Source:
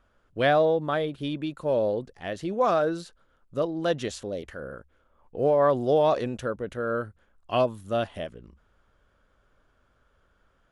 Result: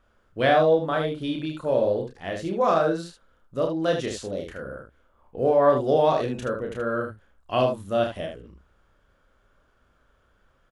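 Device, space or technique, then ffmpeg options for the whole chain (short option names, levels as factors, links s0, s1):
slapback doubling: -filter_complex "[0:a]asplit=3[s0][s1][s2];[s1]adelay=31,volume=0.668[s3];[s2]adelay=77,volume=0.501[s4];[s0][s3][s4]amix=inputs=3:normalize=0"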